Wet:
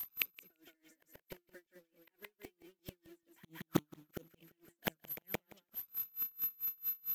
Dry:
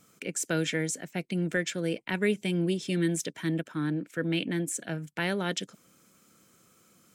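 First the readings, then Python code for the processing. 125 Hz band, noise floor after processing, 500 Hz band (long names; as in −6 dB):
−18.5 dB, below −85 dBFS, −18.0 dB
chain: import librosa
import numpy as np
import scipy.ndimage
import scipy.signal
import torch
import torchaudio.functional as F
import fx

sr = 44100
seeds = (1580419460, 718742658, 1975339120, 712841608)

p1 = scipy.signal.sosfilt(scipy.signal.butter(2, 52.0, 'highpass', fs=sr, output='sos'), x)
p2 = fx.bass_treble(p1, sr, bass_db=-3, treble_db=-7)
p3 = fx.quant_companded(p2, sr, bits=4)
p4 = fx.dmg_crackle(p3, sr, seeds[0], per_s=430.0, level_db=-53.0)
p5 = p4 + 10.0 ** (-47.0 / 20.0) * np.sin(2.0 * np.pi * 12000.0 * np.arange(len(p4)) / sr)
p6 = fx.gate_flip(p5, sr, shuts_db=-27.0, range_db=-39)
p7 = fx.env_flanger(p6, sr, rest_ms=4.3, full_db=-44.0)
p8 = p7 + fx.echo_feedback(p7, sr, ms=171, feedback_pct=22, wet_db=-5, dry=0)
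p9 = p8 * 10.0 ** (-31 * (0.5 - 0.5 * np.cos(2.0 * np.pi * 4.5 * np.arange(len(p8)) / sr)) / 20.0)
y = F.gain(torch.from_numpy(p9), 15.0).numpy()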